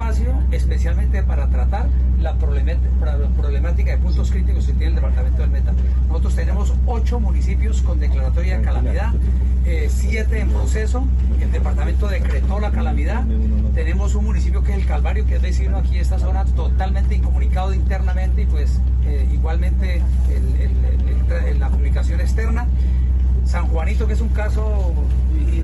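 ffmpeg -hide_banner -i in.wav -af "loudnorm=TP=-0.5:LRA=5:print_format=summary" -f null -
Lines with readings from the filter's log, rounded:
Input Integrated:    -19.3 LUFS
Input True Peak:     -10.2 dBTP
Input LRA:             0.3 LU
Input Threshold:     -29.3 LUFS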